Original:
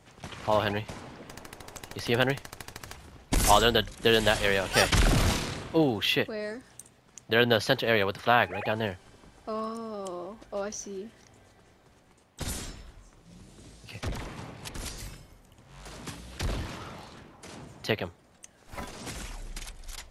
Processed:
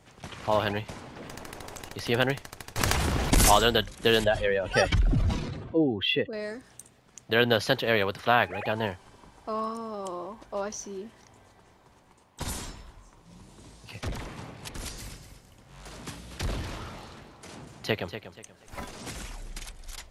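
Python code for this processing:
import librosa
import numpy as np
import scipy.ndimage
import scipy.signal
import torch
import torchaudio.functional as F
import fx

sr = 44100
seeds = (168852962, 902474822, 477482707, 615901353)

y = fx.env_flatten(x, sr, amount_pct=70, at=(1.16, 1.89))
y = fx.env_flatten(y, sr, amount_pct=70, at=(2.76, 3.49), fade=0.02)
y = fx.spec_expand(y, sr, power=1.8, at=(4.24, 6.33))
y = fx.peak_eq(y, sr, hz=960.0, db=8.0, octaves=0.41, at=(8.77, 13.93))
y = fx.echo_feedback(y, sr, ms=240, feedback_pct=29, wet_db=-11.0, at=(14.74, 18.82))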